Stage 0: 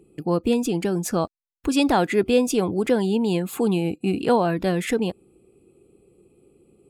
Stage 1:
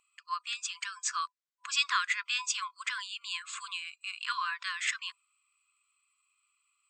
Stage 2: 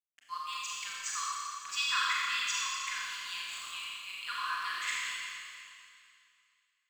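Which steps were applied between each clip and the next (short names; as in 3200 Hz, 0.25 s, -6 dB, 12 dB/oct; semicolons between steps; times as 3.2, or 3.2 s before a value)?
FFT band-pass 1000–8200 Hz
crossover distortion -48 dBFS; Schroeder reverb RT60 2.4 s, combs from 29 ms, DRR -5.5 dB; gain -6 dB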